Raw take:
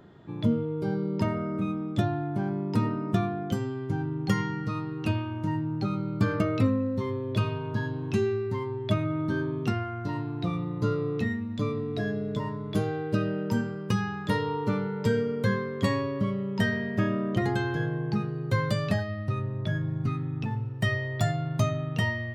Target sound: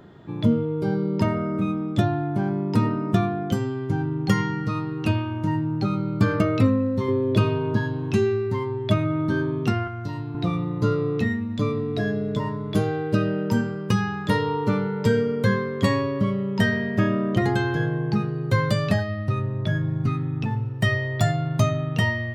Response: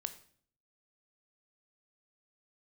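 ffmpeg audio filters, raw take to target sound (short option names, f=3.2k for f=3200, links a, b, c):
-filter_complex "[0:a]asettb=1/sr,asplit=3[a][b][c];[a]atrim=end=7.084[d];[b]atrim=start=7.08:end=7.78,asetpts=PTS-STARTPTS,afade=t=in:d=0.004:c=qsin,afade=t=out:st=0.696:d=0.004:c=qsin,equalizer=f=330:w=1:g=6.5[e];[c]atrim=start=7.776[f];[d][e]acrossfade=d=0.004:c1=hsin:c2=qsin[g];[g][f]acrossfade=d=0.004:c1=qsin:c2=hsin,asettb=1/sr,asplit=3[h][i][j];[h]atrim=end=9.874[k];[i]atrim=start=9.87:end=10.35,asetpts=PTS-STARTPTS,afade=t=in:d=0.004:c=qsin,afade=t=out:st=0.476:d=0.004:c=qsin,acrossover=split=130|3000[l][m][n];[m]acompressor=threshold=-42dB:ratio=2[o];[l][o][n]amix=inputs=3:normalize=0[p];[j]atrim=start=10.346[q];[k][p]acrossfade=d=0.004:c1=hsin:c2=qsin[r];[r][q]acrossfade=d=0.004:c1=qsin:c2=hsin,volume=5dB"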